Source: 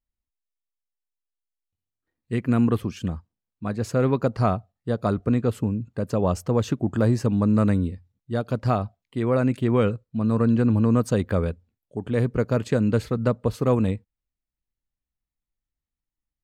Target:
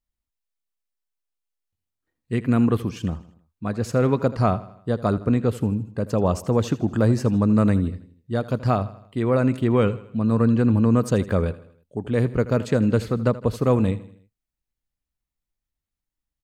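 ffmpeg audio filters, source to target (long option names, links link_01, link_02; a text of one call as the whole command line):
ffmpeg -i in.wav -af "aecho=1:1:80|160|240|320:0.141|0.0692|0.0339|0.0166,volume=1.5dB" out.wav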